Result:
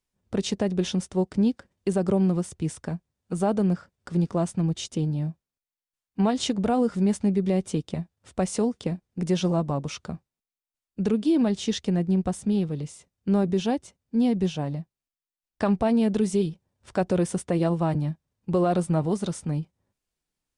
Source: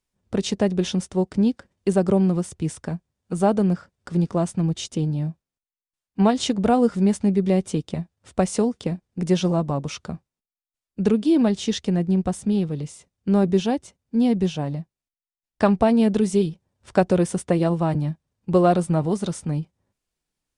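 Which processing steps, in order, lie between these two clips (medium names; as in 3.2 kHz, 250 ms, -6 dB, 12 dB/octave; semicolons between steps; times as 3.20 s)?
peak limiter -12 dBFS, peak gain reduction 5.5 dB; trim -2.5 dB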